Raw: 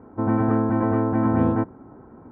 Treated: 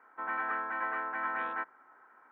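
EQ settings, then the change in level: resonant high-pass 1.7 kHz, resonance Q 1.9; 0.0 dB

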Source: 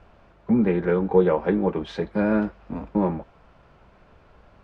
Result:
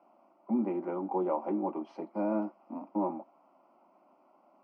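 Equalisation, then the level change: boxcar filter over 12 samples; high-pass 270 Hz 24 dB/octave; static phaser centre 450 Hz, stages 6; -3.0 dB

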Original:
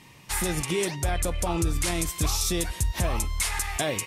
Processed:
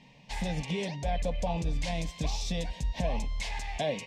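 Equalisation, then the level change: distance through air 180 m; static phaser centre 350 Hz, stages 6; 0.0 dB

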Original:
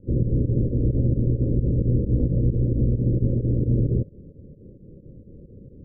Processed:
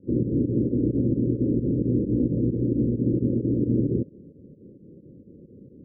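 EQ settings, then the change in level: band-pass filter 290 Hz, Q 1.2; dynamic bell 300 Hz, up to +4 dB, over -41 dBFS, Q 1.4; +2.0 dB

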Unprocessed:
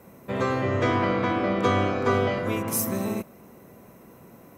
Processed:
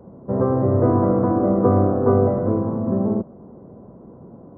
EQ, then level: Gaussian low-pass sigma 9.6 samples; +8.5 dB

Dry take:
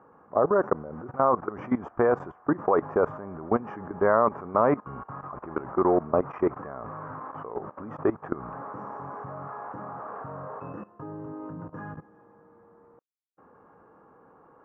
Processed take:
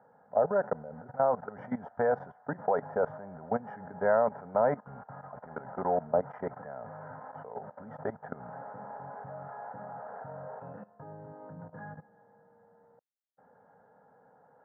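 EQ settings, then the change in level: high-pass 150 Hz 12 dB/octave; treble shelf 2.4 kHz -11 dB; static phaser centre 1.7 kHz, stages 8; 0.0 dB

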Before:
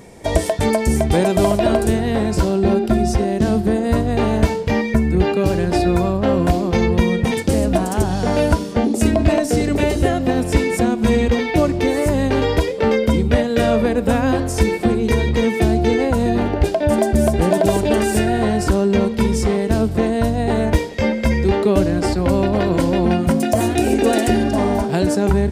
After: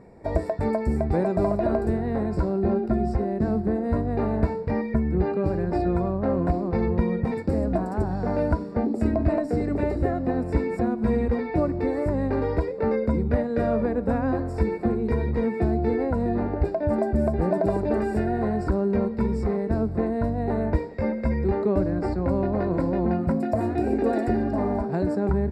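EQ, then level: boxcar filter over 14 samples; -7.0 dB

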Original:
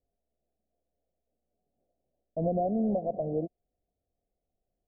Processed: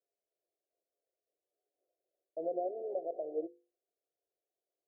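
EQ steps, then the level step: ladder high-pass 300 Hz, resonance 50%; hum notches 50/100/150/200/250/300/350/400/450/500 Hz; static phaser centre 520 Hz, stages 4; +1.0 dB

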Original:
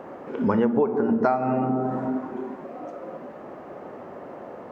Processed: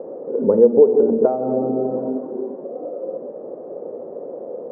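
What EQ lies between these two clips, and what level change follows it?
high-pass 110 Hz; resonant low-pass 490 Hz, resonance Q 4.8; bass shelf 190 Hz -6 dB; +1.0 dB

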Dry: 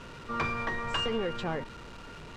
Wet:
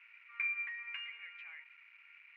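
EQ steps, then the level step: ladder high-pass 2.1 kHz, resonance 75%; tape spacing loss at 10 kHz 32 dB; resonant high shelf 2.9 kHz -6 dB, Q 3; +2.0 dB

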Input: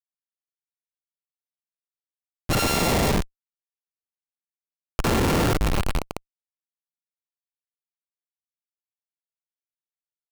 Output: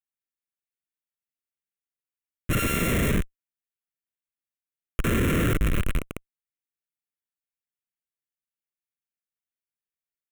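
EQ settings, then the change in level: static phaser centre 2 kHz, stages 4; 0.0 dB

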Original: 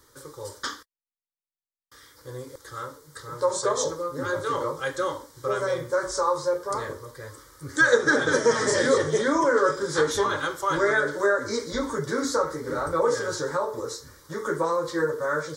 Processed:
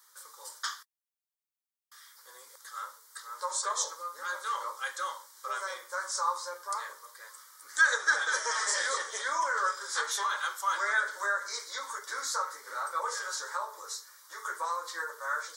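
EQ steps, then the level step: ladder high-pass 770 Hz, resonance 25%; treble shelf 5.2 kHz +8 dB; 0.0 dB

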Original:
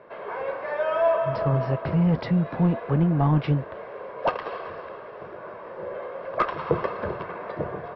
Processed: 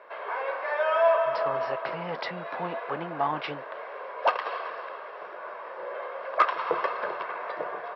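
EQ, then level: high-pass 730 Hz 12 dB/octave; +3.5 dB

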